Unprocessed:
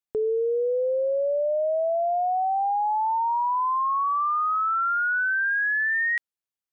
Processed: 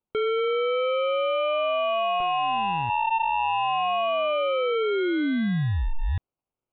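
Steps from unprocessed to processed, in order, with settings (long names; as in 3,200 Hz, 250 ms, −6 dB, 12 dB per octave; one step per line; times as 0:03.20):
0:02.20–0:02.90: lower of the sound and its delayed copy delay 2.7 ms
sample-rate reduction 1,800 Hz, jitter 0%
downsampling to 8,000 Hz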